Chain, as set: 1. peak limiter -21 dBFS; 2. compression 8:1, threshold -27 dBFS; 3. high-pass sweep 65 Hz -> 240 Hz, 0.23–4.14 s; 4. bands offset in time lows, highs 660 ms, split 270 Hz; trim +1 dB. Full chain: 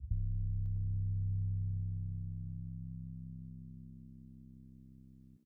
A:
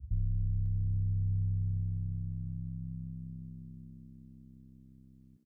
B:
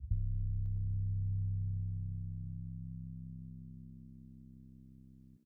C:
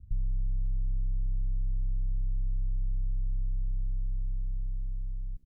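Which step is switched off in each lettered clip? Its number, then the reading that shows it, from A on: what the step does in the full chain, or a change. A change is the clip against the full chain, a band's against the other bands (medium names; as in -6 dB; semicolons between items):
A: 2, mean gain reduction 3.0 dB; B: 1, mean gain reduction 2.0 dB; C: 3, crest factor change -8.0 dB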